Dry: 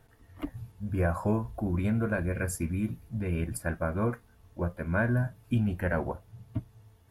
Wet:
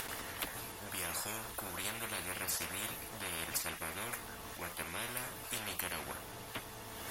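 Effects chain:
upward compression, threshold −45 dBFS
low-shelf EQ 450 Hz −8.5 dB
every bin compressed towards the loudest bin 10 to 1
level +1.5 dB

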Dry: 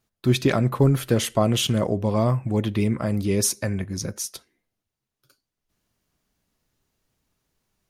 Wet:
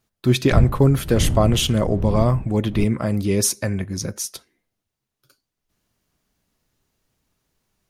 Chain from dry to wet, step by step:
0:00.51–0:02.83: wind on the microphone 110 Hz −16 dBFS
level +2.5 dB

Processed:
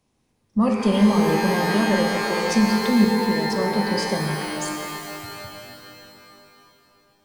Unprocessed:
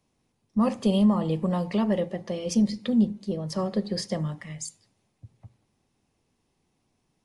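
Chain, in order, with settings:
reverb with rising layers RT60 2.8 s, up +12 semitones, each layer −2 dB, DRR 3.5 dB
level +2.5 dB

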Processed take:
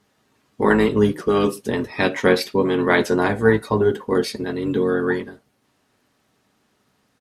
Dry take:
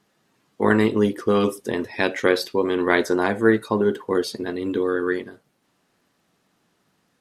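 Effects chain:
notch comb filter 170 Hz
pitch-shifted copies added −12 semitones −9 dB
level +3 dB

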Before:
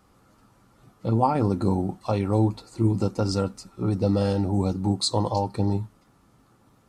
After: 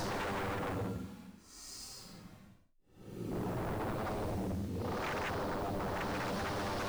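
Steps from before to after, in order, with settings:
hold until the input has moved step −42.5 dBFS
extreme stretch with random phases 7.5×, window 0.10 s, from 0:03.36
wave folding −25.5 dBFS
level −6.5 dB

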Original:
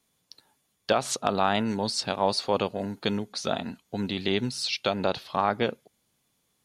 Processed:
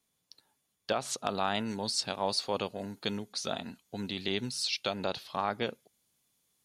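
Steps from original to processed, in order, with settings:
high-shelf EQ 3,400 Hz +2.5 dB, from 0:01.18 +8 dB
level −7.5 dB

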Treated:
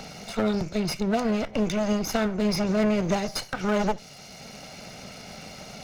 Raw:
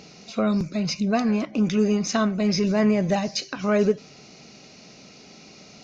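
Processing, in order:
lower of the sound and its delayed copy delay 1.4 ms
multiband upward and downward compressor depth 40%

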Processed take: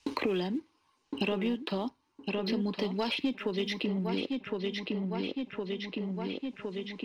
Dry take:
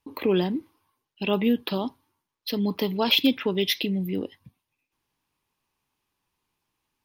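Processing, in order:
low-pass filter 7,500 Hz 24 dB per octave
parametric band 110 Hz −10 dB 0.63 octaves
notch filter 3,400 Hz, Q 14
leveller curve on the samples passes 1
feedback echo with a low-pass in the loop 1,062 ms, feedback 38%, low-pass 3,500 Hz, level −9 dB
multiband upward and downward compressor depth 100%
level −8.5 dB

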